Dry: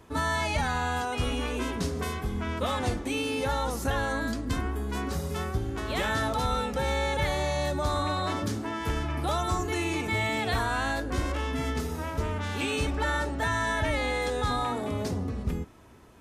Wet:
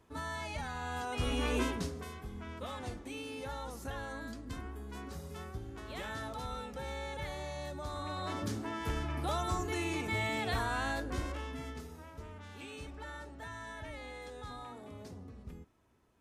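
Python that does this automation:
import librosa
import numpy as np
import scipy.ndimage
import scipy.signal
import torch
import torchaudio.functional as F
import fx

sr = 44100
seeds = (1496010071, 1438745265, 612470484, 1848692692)

y = fx.gain(x, sr, db=fx.line((0.75, -12.0), (1.58, 0.0), (2.04, -13.0), (7.92, -13.0), (8.49, -6.0), (11.03, -6.0), (12.07, -17.5)))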